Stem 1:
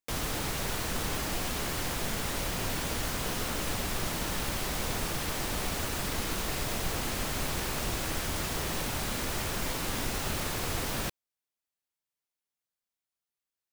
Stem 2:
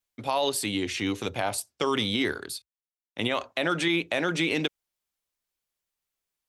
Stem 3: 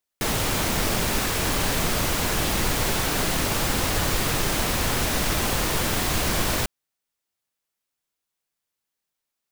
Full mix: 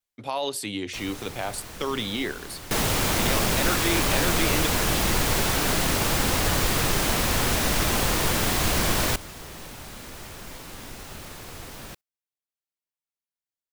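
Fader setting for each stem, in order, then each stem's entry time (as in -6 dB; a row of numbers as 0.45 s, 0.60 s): -7.5 dB, -2.5 dB, +0.5 dB; 0.85 s, 0.00 s, 2.50 s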